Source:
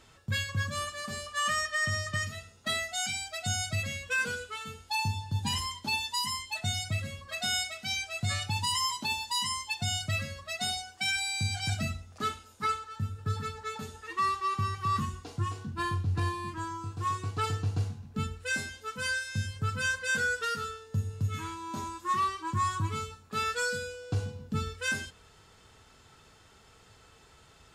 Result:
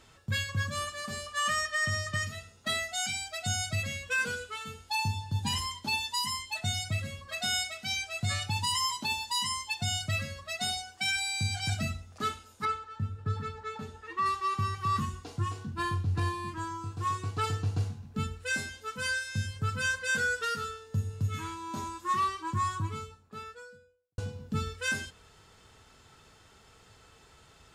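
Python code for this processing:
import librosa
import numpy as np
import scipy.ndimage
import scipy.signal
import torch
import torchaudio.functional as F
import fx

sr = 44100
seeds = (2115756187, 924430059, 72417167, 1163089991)

y = fx.lowpass(x, sr, hz=2200.0, slope=6, at=(12.65, 14.26))
y = fx.studio_fade_out(y, sr, start_s=22.31, length_s=1.87)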